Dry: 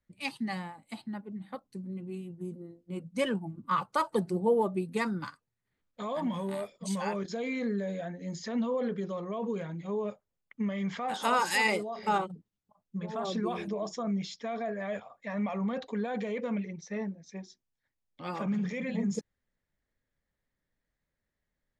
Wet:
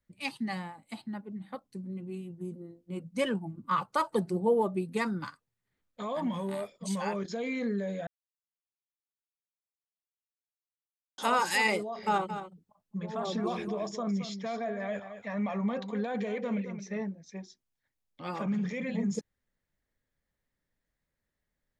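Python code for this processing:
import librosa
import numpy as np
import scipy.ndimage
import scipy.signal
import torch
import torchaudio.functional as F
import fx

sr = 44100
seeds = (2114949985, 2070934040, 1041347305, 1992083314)

y = fx.echo_single(x, sr, ms=220, db=-10.5, at=(12.28, 17.01), fade=0.02)
y = fx.edit(y, sr, fx.silence(start_s=8.07, length_s=3.11), tone=tone)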